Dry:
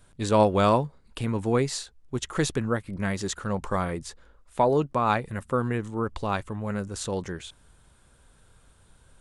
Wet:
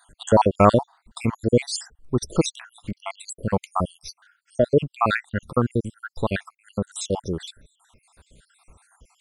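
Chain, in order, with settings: random holes in the spectrogram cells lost 70%; trim +8 dB

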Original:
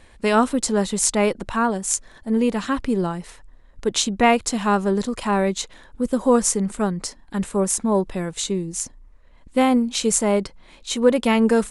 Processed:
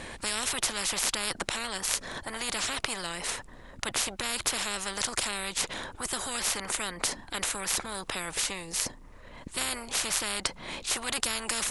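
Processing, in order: spectrum-flattening compressor 10:1; trim -3 dB

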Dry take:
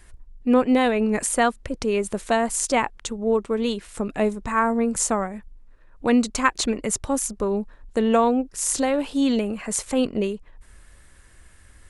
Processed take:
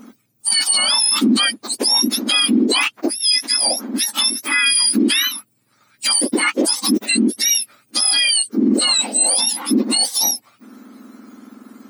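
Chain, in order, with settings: spectrum inverted on a logarithmic axis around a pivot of 1.5 kHz; peaking EQ 700 Hz -5 dB 2.9 oct; in parallel at -0.5 dB: compressor with a negative ratio -28 dBFS; on the sum: dynamic bell 3.1 kHz, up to +6 dB, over -35 dBFS, Q 1.2; loudness maximiser +12.5 dB; trim -6.5 dB

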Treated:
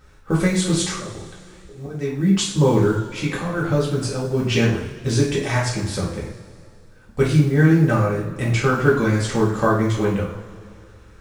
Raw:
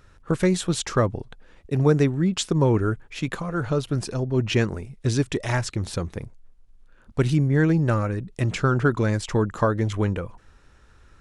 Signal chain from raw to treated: companded quantiser 8-bit; 0.81–2.56 s: slow attack 483 ms; two-slope reverb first 0.5 s, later 2.5 s, from -18 dB, DRR -6 dB; trim -2 dB

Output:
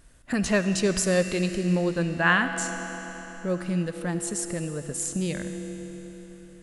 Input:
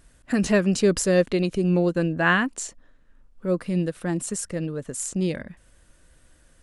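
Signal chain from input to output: on a send at -7.5 dB: reverberation RT60 4.1 s, pre-delay 46 ms; on the sum: dynamic bell 330 Hz, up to -6 dB, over -32 dBFS, Q 0.82

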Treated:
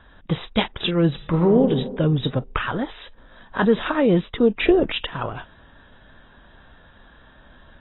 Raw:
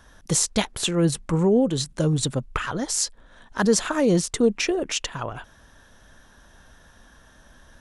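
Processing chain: 1.11–1.61 s: reverb throw, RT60 1.3 s, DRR 5.5 dB; 4.60–5.01 s: bass shelf 470 Hz +10.5 dB; trim +2 dB; AAC 16 kbps 22.05 kHz

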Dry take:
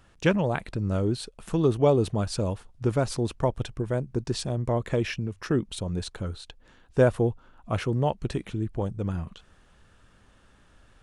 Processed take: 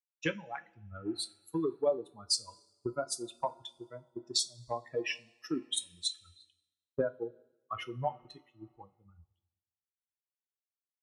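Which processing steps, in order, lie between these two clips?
expander on every frequency bin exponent 3; high-pass 360 Hz 12 dB/octave; peaking EQ 2.7 kHz +2.5 dB 0.77 oct; compression 6:1, threshold -44 dBFS, peak gain reduction 22.5 dB; reverberation, pre-delay 3 ms, DRR 7.5 dB; three bands expanded up and down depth 100%; trim +8.5 dB

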